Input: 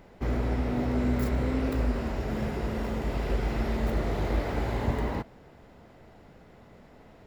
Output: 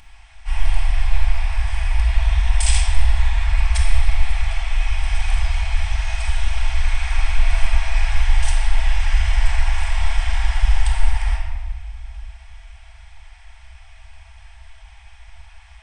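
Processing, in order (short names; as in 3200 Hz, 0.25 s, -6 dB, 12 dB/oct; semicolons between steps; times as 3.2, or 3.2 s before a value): octaver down 1 oct, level -1 dB; brick-wall FIR band-stop 170–1400 Hz; resonant high shelf 3600 Hz +10.5 dB, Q 1.5; wide varispeed 0.459×; shoebox room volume 1600 m³, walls mixed, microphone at 2.3 m; gain +6.5 dB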